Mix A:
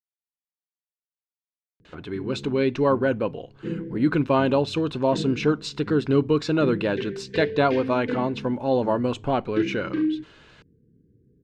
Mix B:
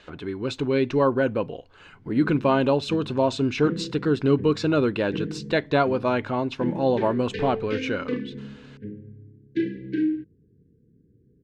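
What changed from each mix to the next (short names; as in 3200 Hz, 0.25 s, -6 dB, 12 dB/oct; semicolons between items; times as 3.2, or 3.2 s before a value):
speech: entry -1.85 s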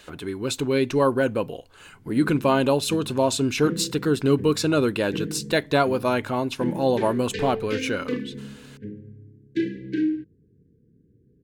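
master: remove air absorption 160 m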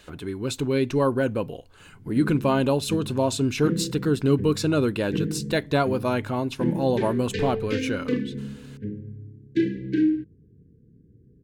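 speech -3.5 dB; master: add low shelf 220 Hz +7.5 dB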